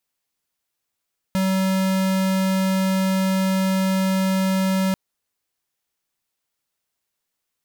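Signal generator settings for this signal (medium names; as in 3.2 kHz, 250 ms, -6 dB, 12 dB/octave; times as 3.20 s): tone square 190 Hz -20 dBFS 3.59 s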